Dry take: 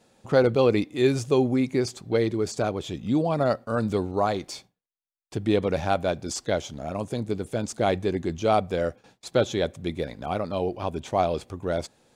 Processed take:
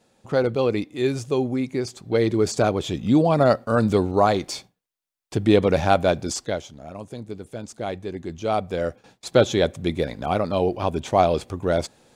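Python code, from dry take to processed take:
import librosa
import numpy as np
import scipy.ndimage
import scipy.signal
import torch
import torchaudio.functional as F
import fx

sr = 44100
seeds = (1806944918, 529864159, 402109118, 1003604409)

y = fx.gain(x, sr, db=fx.line((1.92, -1.5), (2.39, 6.0), (6.22, 6.0), (6.74, -6.0), (8.05, -6.0), (9.35, 5.5)))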